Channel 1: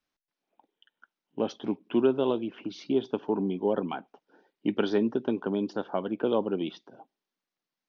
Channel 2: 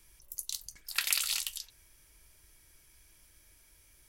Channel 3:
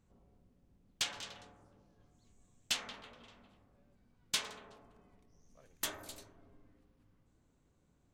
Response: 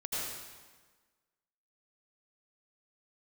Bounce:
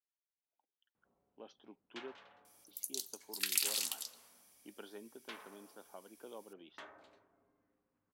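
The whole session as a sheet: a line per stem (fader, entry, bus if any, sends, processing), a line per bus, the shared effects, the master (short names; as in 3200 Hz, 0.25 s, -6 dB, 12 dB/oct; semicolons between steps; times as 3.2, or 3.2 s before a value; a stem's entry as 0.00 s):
-19.5 dB, 0.00 s, muted 2.12–2.68, no send, dry
-12.5 dB, 2.45 s, send -24 dB, high shelf 2200 Hz +10 dB
-4.0 dB, 0.95 s, no send, LPF 1700 Hz 12 dB/oct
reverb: on, RT60 1.4 s, pre-delay 73 ms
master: HPF 660 Hz 6 dB/oct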